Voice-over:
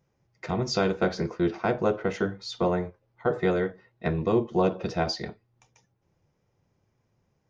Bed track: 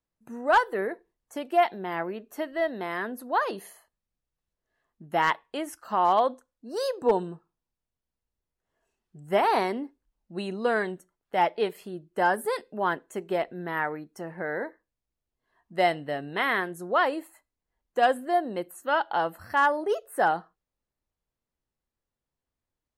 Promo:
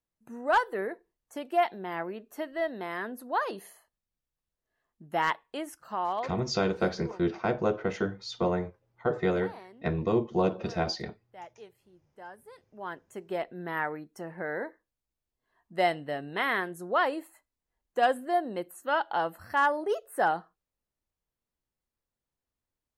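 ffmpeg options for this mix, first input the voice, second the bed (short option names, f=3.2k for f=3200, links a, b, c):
-filter_complex "[0:a]adelay=5800,volume=-2.5dB[a];[1:a]volume=16.5dB,afade=t=out:st=5.6:d=0.95:silence=0.112202,afade=t=in:st=12.57:d=1.13:silence=0.1[b];[a][b]amix=inputs=2:normalize=0"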